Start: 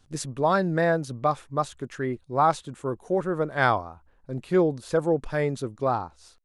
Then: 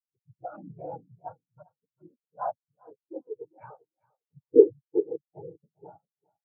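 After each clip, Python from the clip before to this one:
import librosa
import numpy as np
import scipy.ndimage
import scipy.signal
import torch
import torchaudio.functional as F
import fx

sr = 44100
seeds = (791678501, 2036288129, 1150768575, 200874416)

y = fx.noise_vocoder(x, sr, seeds[0], bands=8)
y = fx.echo_feedback(y, sr, ms=399, feedback_pct=35, wet_db=-6.5)
y = fx.spectral_expand(y, sr, expansion=4.0)
y = y * librosa.db_to_amplitude(6.0)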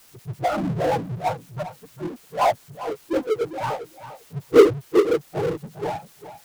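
y = fx.power_curve(x, sr, exponent=0.5)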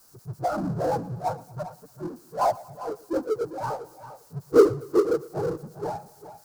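y = fx.band_shelf(x, sr, hz=2600.0, db=-13.0, octaves=1.2)
y = fx.echo_feedback(y, sr, ms=116, feedback_pct=50, wet_db=-20.5)
y = y * librosa.db_to_amplitude(-3.5)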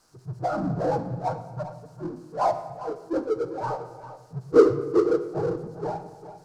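y = fx.air_absorb(x, sr, metres=73.0)
y = fx.room_shoebox(y, sr, seeds[1], volume_m3=960.0, walls='mixed', distance_m=0.55)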